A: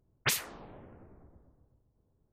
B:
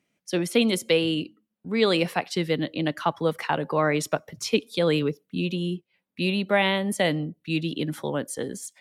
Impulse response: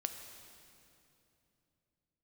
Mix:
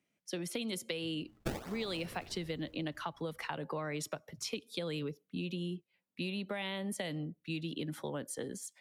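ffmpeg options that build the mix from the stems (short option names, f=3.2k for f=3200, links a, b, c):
-filter_complex "[0:a]acrusher=samples=27:mix=1:aa=0.000001:lfo=1:lforange=43.2:lforate=1.3,adelay=1200,volume=2.5dB[a];[1:a]acrossover=split=150|3000[b][c][d];[c]acompressor=threshold=-25dB:ratio=6[e];[b][e][d]amix=inputs=3:normalize=0,volume=-7.5dB[f];[a][f]amix=inputs=2:normalize=0,acompressor=threshold=-34dB:ratio=6"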